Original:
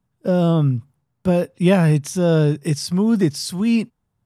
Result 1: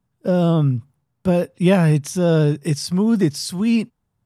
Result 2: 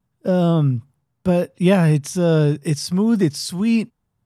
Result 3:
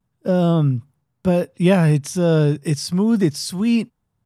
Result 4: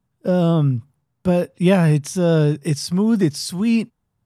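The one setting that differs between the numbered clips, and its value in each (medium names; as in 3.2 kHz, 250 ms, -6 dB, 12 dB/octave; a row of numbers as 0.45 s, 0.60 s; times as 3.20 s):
vibrato, rate: 15 Hz, 0.76 Hz, 0.34 Hz, 6.1 Hz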